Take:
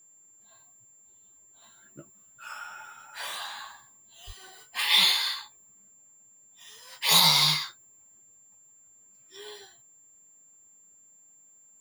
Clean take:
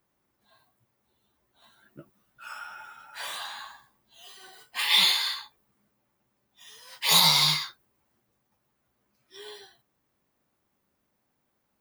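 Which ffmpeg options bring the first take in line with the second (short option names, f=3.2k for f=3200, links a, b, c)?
-filter_complex "[0:a]bandreject=f=7.3k:w=30,asplit=3[a][b][c];[a]afade=t=out:st=4.26:d=0.02[d];[b]highpass=f=140:w=0.5412,highpass=f=140:w=1.3066,afade=t=in:st=4.26:d=0.02,afade=t=out:st=4.38:d=0.02[e];[c]afade=t=in:st=4.38:d=0.02[f];[d][e][f]amix=inputs=3:normalize=0"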